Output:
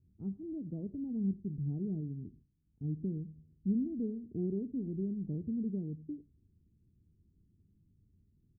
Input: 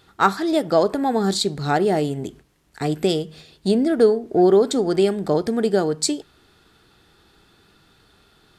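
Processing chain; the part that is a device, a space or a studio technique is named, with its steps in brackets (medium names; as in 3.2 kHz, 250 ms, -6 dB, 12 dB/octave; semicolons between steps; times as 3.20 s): the neighbour's flat through the wall (low-pass 240 Hz 24 dB/octave; peaking EQ 88 Hz +7 dB 0.61 oct); 2.01–2.84 s: bass shelf 370 Hz -3.5 dB; delay 90 ms -22.5 dB; trim -9 dB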